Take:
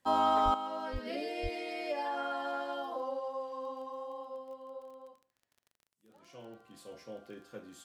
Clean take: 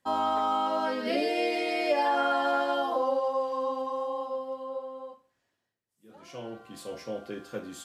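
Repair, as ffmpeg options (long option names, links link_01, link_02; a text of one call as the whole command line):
ffmpeg -i in.wav -filter_complex "[0:a]adeclick=threshold=4,asplit=3[link_01][link_02][link_03];[link_01]afade=type=out:start_time=0.44:duration=0.02[link_04];[link_02]highpass=frequency=140:width=0.5412,highpass=frequency=140:width=1.3066,afade=type=in:start_time=0.44:duration=0.02,afade=type=out:start_time=0.56:duration=0.02[link_05];[link_03]afade=type=in:start_time=0.56:duration=0.02[link_06];[link_04][link_05][link_06]amix=inputs=3:normalize=0,asplit=3[link_07][link_08][link_09];[link_07]afade=type=out:start_time=0.92:duration=0.02[link_10];[link_08]highpass=frequency=140:width=0.5412,highpass=frequency=140:width=1.3066,afade=type=in:start_time=0.92:duration=0.02,afade=type=out:start_time=1.04:duration=0.02[link_11];[link_09]afade=type=in:start_time=1.04:duration=0.02[link_12];[link_10][link_11][link_12]amix=inputs=3:normalize=0,asplit=3[link_13][link_14][link_15];[link_13]afade=type=out:start_time=1.42:duration=0.02[link_16];[link_14]highpass=frequency=140:width=0.5412,highpass=frequency=140:width=1.3066,afade=type=in:start_time=1.42:duration=0.02,afade=type=out:start_time=1.54:duration=0.02[link_17];[link_15]afade=type=in:start_time=1.54:duration=0.02[link_18];[link_16][link_17][link_18]amix=inputs=3:normalize=0,asetnsamples=nb_out_samples=441:pad=0,asendcmd='0.54 volume volume 10dB',volume=0dB" out.wav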